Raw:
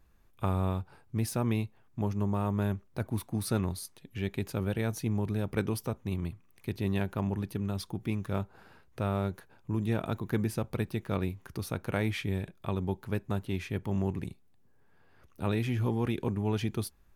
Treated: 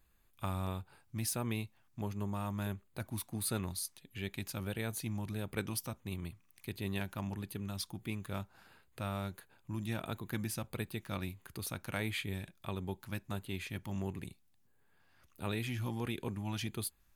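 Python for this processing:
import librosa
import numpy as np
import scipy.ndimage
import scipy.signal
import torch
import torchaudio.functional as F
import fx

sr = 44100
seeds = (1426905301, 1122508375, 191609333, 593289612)

y = fx.high_shelf(x, sr, hz=2000.0, db=11.5)
y = fx.filter_lfo_notch(y, sr, shape='square', hz=1.5, low_hz=430.0, high_hz=5600.0, q=3.0)
y = y * 10.0 ** (-8.0 / 20.0)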